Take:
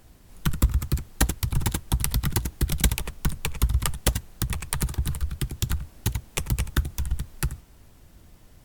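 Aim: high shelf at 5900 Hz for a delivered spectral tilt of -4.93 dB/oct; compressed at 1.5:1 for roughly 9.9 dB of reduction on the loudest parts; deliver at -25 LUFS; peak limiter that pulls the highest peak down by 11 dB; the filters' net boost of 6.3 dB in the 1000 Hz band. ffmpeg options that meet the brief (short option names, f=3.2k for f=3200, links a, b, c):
-af "equalizer=f=1k:t=o:g=8,highshelf=f=5.9k:g=-8.5,acompressor=threshold=-45dB:ratio=1.5,volume=15.5dB,alimiter=limit=-10dB:level=0:latency=1"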